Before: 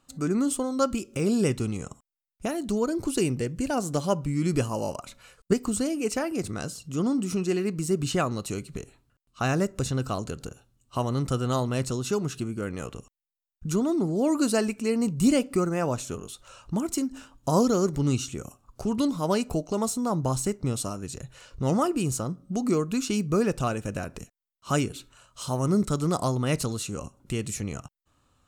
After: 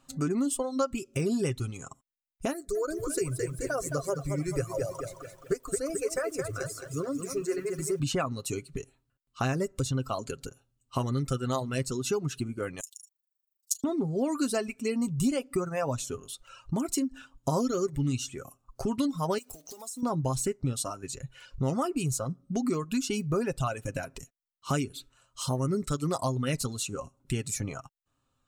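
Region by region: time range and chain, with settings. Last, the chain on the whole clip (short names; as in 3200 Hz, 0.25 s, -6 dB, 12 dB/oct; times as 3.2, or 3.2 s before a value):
2.53–8 fixed phaser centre 860 Hz, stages 6 + lo-fi delay 0.216 s, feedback 55%, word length 9-bit, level -5 dB
12.8–13.84 inverse Chebyshev high-pass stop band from 980 Hz, stop band 70 dB + tilt +4 dB/oct + AM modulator 25 Hz, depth 100%
19.38–20.03 block floating point 5-bit + tone controls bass -9 dB, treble +7 dB + compressor 16:1, threshold -36 dBFS
whole clip: reverb removal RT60 1.8 s; comb 7.5 ms, depth 44%; compressor 3:1, threshold -28 dBFS; gain +1.5 dB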